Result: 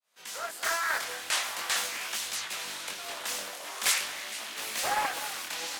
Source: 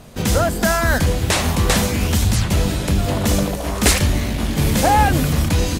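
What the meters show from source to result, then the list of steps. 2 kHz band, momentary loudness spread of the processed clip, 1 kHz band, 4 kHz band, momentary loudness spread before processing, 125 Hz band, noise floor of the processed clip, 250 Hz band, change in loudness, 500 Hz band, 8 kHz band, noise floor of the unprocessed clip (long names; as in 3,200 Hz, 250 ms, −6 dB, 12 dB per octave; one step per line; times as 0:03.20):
−8.5 dB, 9 LU, −13.0 dB, −7.5 dB, 5 LU, below −40 dB, −44 dBFS, −33.5 dB, −13.0 dB, −20.0 dB, −9.0 dB, −25 dBFS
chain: fade in at the beginning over 0.65 s
high-pass filter 1,200 Hz 12 dB per octave
on a send: delay that swaps between a low-pass and a high-pass 231 ms, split 2,200 Hz, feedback 75%, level −12.5 dB
on the sum: chorus effect 0.44 Hz, delay 18 ms, depth 6.2 ms
highs frequency-modulated by the lows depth 0.36 ms
level −4.5 dB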